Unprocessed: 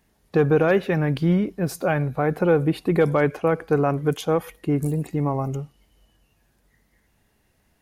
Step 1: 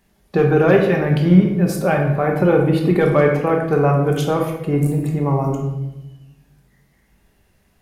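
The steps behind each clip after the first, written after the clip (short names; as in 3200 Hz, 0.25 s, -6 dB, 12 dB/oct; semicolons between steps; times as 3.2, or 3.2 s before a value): shoebox room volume 410 m³, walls mixed, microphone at 1.2 m; gain +2 dB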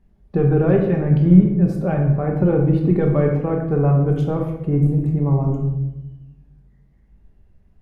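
tilt -4 dB/oct; gain -9 dB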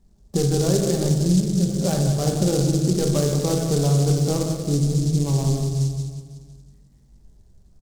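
compressor 3:1, threshold -18 dBFS, peak gain reduction 10 dB; feedback echo 0.184 s, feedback 50%, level -8.5 dB; noise-modulated delay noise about 5900 Hz, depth 0.11 ms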